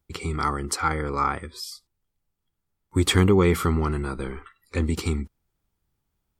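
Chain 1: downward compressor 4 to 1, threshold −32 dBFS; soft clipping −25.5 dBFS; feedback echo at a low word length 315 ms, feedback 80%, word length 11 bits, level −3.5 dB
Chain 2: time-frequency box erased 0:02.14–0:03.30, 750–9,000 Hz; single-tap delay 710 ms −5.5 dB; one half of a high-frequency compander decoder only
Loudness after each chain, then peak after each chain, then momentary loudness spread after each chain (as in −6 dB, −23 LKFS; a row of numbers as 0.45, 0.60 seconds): −35.0, −25.0 LKFS; −20.5, −8.0 dBFS; 7, 14 LU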